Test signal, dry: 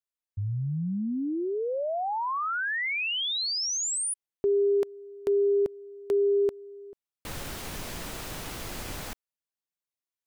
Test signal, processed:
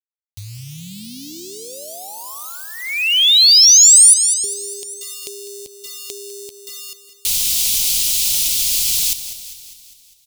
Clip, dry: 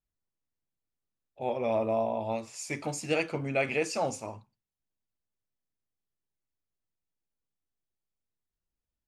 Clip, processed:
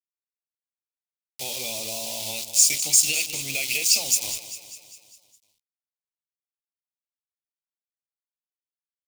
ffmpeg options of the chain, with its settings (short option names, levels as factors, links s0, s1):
-filter_complex "[0:a]adynamicequalizer=threshold=0.00316:dfrequency=1300:dqfactor=2.1:tfrequency=1300:tqfactor=2.1:attack=5:release=100:ratio=0.375:range=1.5:mode=cutabove:tftype=bell,alimiter=level_in=1.12:limit=0.0631:level=0:latency=1:release=341,volume=0.891,aeval=exprs='val(0)*gte(abs(val(0)),0.00708)':c=same,asplit=2[s0][s1];[s1]aecho=0:1:201|402|603|804|1005|1206:0.224|0.125|0.0702|0.0393|0.022|0.0123[s2];[s0][s2]amix=inputs=2:normalize=0,acompressor=threshold=0.0224:ratio=3:attack=47:release=138,aexciter=amount=13.8:drive=8.9:freq=2600,lowshelf=f=120:g=7.5,volume=0.596"